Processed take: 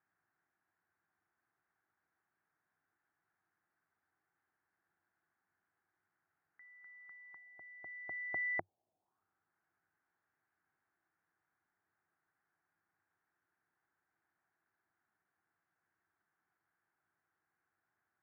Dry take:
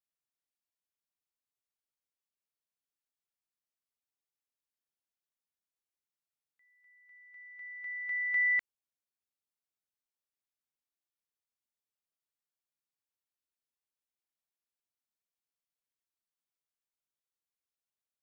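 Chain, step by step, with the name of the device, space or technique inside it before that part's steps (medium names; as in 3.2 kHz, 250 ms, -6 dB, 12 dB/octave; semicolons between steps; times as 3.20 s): envelope filter bass rig (touch-sensitive low-pass 650–1600 Hz down, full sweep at -48.5 dBFS; cabinet simulation 76–2300 Hz, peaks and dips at 97 Hz +9 dB, 160 Hz +6 dB, 340 Hz +8 dB, 540 Hz -6 dB, 770 Hz +7 dB); trim +10 dB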